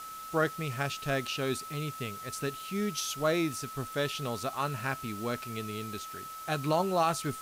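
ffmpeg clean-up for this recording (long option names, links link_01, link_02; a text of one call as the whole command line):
ffmpeg -i in.wav -af "bandreject=frequency=1300:width=30,afwtdn=0.0035" out.wav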